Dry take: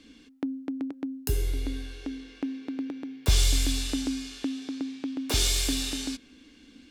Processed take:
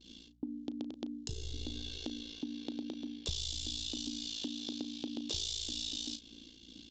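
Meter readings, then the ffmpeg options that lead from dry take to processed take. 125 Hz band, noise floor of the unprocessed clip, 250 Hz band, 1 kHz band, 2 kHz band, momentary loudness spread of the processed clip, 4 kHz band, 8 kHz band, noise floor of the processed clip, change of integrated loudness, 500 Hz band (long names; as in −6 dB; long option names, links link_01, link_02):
−15.5 dB, −55 dBFS, −9.5 dB, −14.0 dB, −16.0 dB, 9 LU, −6.0 dB, −11.5 dB, −57 dBFS, −9.5 dB, −10.5 dB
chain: -filter_complex "[0:a]equalizer=frequency=1400:width_type=o:width=0.94:gain=-8,aeval=exprs='val(0)*sin(2*PI*28*n/s)':channel_layout=same,agate=range=-33dB:threshold=-53dB:ratio=3:detection=peak,highshelf=frequency=2700:width_type=q:width=3:gain=7,asplit=2[link_01][link_02];[link_02]adelay=35,volume=-10.5dB[link_03];[link_01][link_03]amix=inputs=2:normalize=0,acompressor=threshold=-36dB:ratio=6,aresample=16000,aresample=44100,aeval=exprs='val(0)+0.000447*(sin(2*PI*60*n/s)+sin(2*PI*2*60*n/s)/2+sin(2*PI*3*60*n/s)/3+sin(2*PI*4*60*n/s)/4+sin(2*PI*5*60*n/s)/5)':channel_layout=same"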